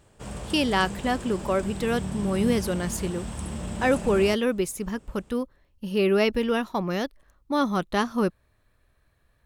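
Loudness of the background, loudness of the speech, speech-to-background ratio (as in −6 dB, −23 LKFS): −34.5 LKFS, −26.0 LKFS, 8.5 dB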